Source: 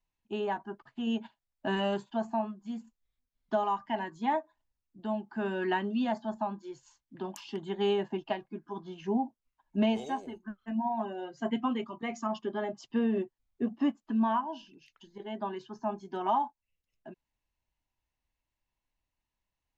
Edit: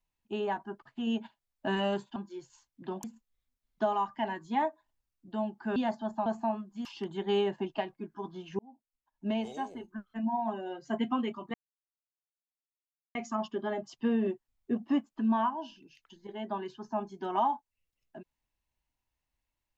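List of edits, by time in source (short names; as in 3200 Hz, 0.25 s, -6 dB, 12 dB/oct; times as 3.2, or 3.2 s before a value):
2.16–2.75 swap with 6.49–7.37
5.47–5.99 cut
9.11–10.43 fade in
12.06 insert silence 1.61 s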